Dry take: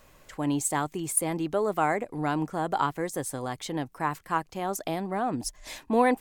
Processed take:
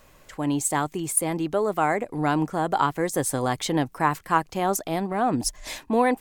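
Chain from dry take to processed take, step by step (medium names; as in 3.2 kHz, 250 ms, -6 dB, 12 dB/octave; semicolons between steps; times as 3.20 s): gain riding within 4 dB 0.5 s; 4.80–5.21 s: transient shaper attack -10 dB, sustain -6 dB; trim +4.5 dB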